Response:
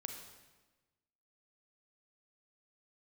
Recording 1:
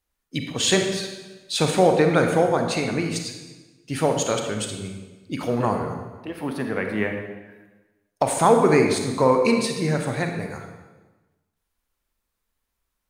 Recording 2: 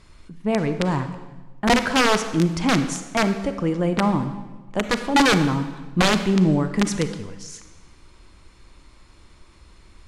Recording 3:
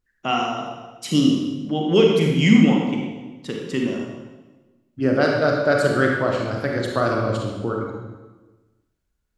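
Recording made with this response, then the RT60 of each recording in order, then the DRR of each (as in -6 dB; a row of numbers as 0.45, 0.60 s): 1; 1.2, 1.2, 1.2 s; 3.5, 9.0, -0.5 dB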